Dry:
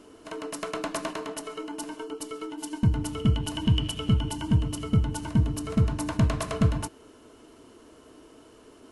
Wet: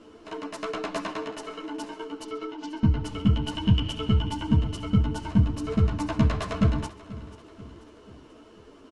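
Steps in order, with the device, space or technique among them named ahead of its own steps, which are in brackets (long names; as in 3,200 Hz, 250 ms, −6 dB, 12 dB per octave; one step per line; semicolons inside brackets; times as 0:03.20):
0:02.24–0:03.03: low-pass filter 6,000 Hz 24 dB per octave
string-machine ensemble chorus (string-ensemble chorus; low-pass filter 5,300 Hz 12 dB per octave)
repeating echo 487 ms, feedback 51%, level −18 dB
level +4 dB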